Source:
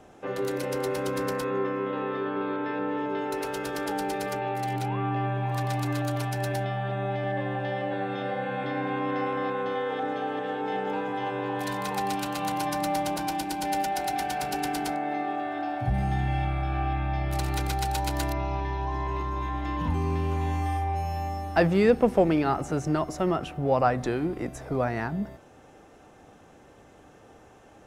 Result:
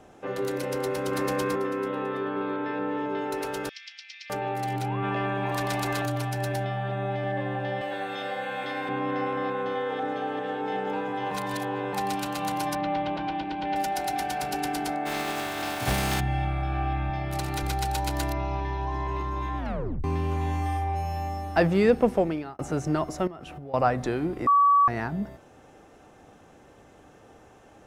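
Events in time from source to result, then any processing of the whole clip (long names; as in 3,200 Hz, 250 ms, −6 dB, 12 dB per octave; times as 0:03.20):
0:00.78–0:01.22: delay throw 330 ms, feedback 25%, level −0.5 dB
0:03.69–0:04.30: elliptic band-pass filter 2,100–5,600 Hz, stop band 60 dB
0:05.02–0:06.05: ceiling on every frequency bin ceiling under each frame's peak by 13 dB
0:07.81–0:08.89: RIAA equalisation recording
0:11.31–0:11.93: reverse
0:12.75–0:13.76: Chebyshev low-pass filter 3,300 Hz, order 3
0:15.05–0:16.19: compressing power law on the bin magnitudes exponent 0.44
0:17.10–0:17.63: high-pass filter 86 Hz
0:19.58: tape stop 0.46 s
0:22.07–0:22.59: fade out
0:23.27–0:23.74: downward compressor 16 to 1, threshold −36 dBFS
0:24.47–0:24.88: beep over 1,140 Hz −15.5 dBFS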